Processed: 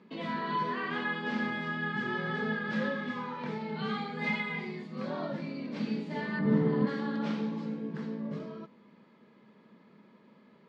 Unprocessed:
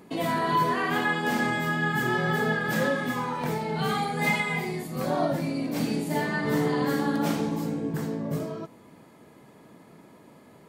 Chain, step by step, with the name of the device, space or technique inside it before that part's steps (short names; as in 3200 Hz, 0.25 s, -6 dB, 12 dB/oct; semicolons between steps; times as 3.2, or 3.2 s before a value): 6.39–6.87 tilt -4 dB/oct; kitchen radio (speaker cabinet 200–4400 Hz, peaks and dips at 210 Hz +10 dB, 300 Hz -7 dB, 720 Hz -10 dB); gain -6.5 dB